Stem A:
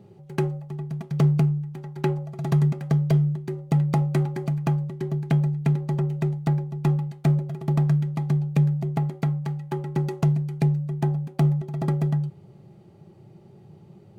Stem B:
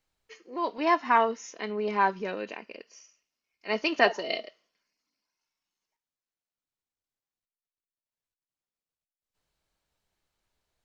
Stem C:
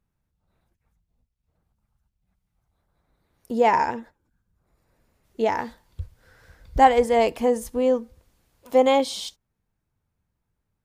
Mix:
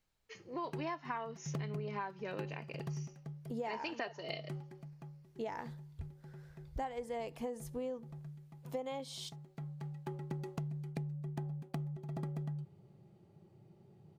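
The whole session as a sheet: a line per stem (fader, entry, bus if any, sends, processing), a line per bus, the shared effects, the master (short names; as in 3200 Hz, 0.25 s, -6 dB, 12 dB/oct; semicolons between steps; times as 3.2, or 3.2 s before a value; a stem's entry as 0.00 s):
-12.0 dB, 0.35 s, no send, auto duck -16 dB, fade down 0.90 s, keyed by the third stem
-3.0 dB, 0.00 s, no send, dry
-12.0 dB, 0.00 s, no send, dry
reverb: off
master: compressor 16:1, threshold -36 dBFS, peak gain reduction 18.5 dB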